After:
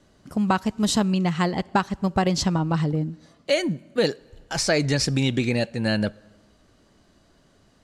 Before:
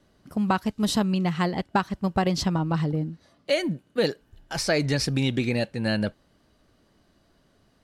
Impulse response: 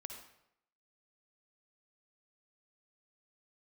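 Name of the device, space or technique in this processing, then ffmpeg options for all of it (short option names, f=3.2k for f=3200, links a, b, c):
compressed reverb return: -filter_complex "[0:a]asplit=2[a][b];[1:a]atrim=start_sample=2205[c];[b][c]afir=irnorm=-1:irlink=0,acompressor=threshold=-41dB:ratio=6,volume=-4.5dB[d];[a][d]amix=inputs=2:normalize=0,lowpass=11k,equalizer=f=7.1k:t=o:w=0.46:g=6,volume=1.5dB"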